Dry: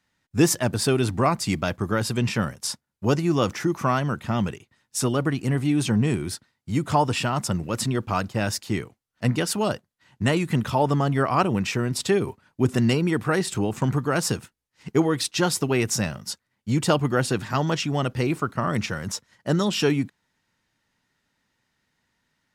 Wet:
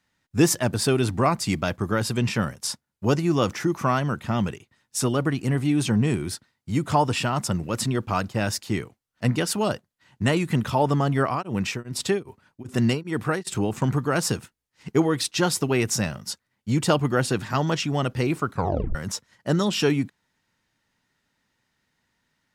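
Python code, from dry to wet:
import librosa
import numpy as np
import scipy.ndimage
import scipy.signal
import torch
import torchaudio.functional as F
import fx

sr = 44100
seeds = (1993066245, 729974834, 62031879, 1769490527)

y = fx.tremolo_abs(x, sr, hz=2.5, at=(11.24, 13.47))
y = fx.edit(y, sr, fx.tape_stop(start_s=18.52, length_s=0.43), tone=tone)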